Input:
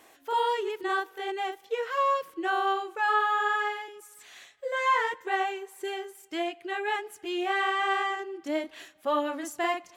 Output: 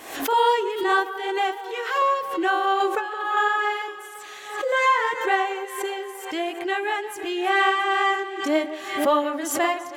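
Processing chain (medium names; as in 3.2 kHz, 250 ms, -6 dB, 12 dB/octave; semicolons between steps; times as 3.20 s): 1.62–2.02 s: high-pass 1 kHz 6 dB/octave; 2.80–3.37 s: compressor with a negative ratio -33 dBFS, ratio -1; tremolo 2.1 Hz, depth 44%; echo whose repeats swap between lows and highs 170 ms, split 1.7 kHz, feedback 76%, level -13 dB; swell ahead of each attack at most 76 dB/s; trim +8 dB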